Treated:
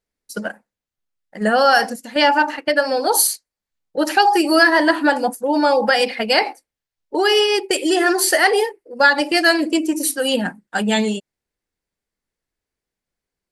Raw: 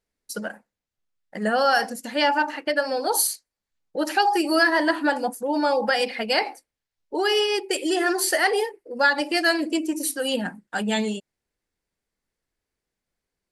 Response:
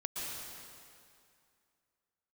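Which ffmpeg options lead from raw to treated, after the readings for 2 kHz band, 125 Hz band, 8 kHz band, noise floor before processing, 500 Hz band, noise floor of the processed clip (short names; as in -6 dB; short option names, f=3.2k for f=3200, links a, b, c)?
+6.0 dB, n/a, +6.0 dB, under -85 dBFS, +6.0 dB, under -85 dBFS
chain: -af "agate=range=-7dB:threshold=-31dB:ratio=16:detection=peak,volume=6dB"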